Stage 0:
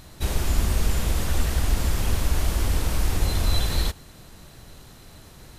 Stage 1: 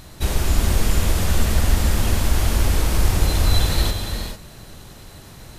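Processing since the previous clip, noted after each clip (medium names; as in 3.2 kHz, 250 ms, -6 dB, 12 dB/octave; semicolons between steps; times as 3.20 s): gated-style reverb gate 470 ms rising, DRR 4.5 dB; trim +4 dB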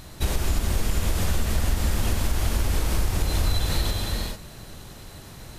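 compression, threshold -17 dBFS, peak gain reduction 8 dB; trim -1 dB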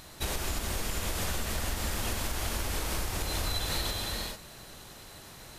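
bass shelf 290 Hz -10 dB; trim -2 dB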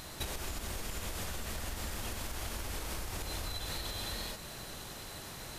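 compression 10:1, threshold -38 dBFS, peak gain reduction 12 dB; trim +3 dB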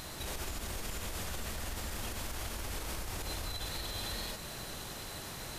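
peak limiter -31 dBFS, peak gain reduction 7 dB; trim +2 dB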